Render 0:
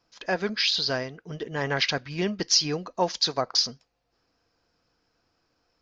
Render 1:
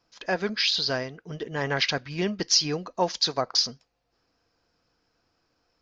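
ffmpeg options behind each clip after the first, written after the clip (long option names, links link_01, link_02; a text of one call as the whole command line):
ffmpeg -i in.wav -af anull out.wav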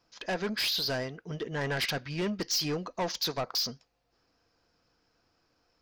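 ffmpeg -i in.wav -af "asoftclip=type=tanh:threshold=-26dB" out.wav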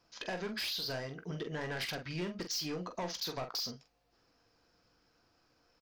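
ffmpeg -i in.wav -filter_complex "[0:a]acompressor=threshold=-37dB:ratio=6,asplit=2[link_01][link_02];[link_02]aecho=0:1:17|45:0.266|0.398[link_03];[link_01][link_03]amix=inputs=2:normalize=0" out.wav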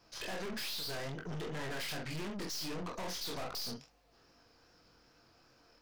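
ffmpeg -i in.wav -af "flanger=delay=20:depth=6.3:speed=2.5,aeval=exprs='(tanh(355*val(0)+0.6)-tanh(0.6))/355':channel_layout=same,volume=12dB" out.wav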